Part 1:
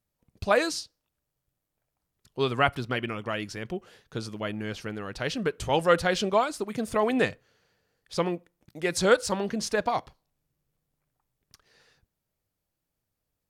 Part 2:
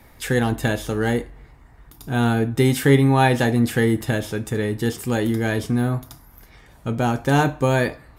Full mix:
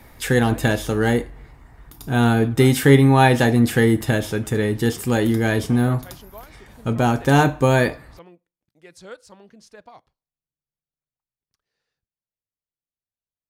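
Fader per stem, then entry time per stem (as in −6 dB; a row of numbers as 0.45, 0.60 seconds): −18.5, +2.5 decibels; 0.00, 0.00 seconds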